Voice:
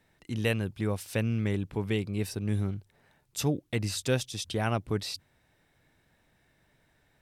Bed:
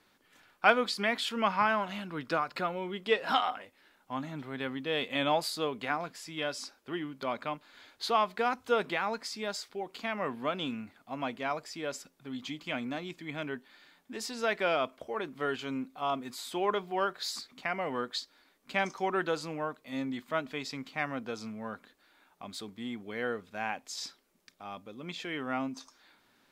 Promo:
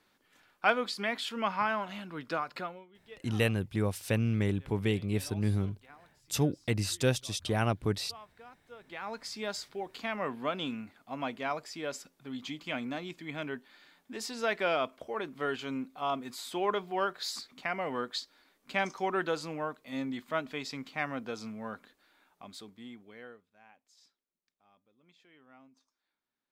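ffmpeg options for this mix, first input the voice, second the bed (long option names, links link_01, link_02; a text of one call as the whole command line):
ffmpeg -i stem1.wav -i stem2.wav -filter_complex "[0:a]adelay=2950,volume=0dB[link_01];[1:a]volume=19.5dB,afade=type=out:start_time=2.55:duration=0.31:silence=0.1,afade=type=in:start_time=8.82:duration=0.56:silence=0.0749894,afade=type=out:start_time=21.81:duration=1.67:silence=0.0630957[link_02];[link_01][link_02]amix=inputs=2:normalize=0" out.wav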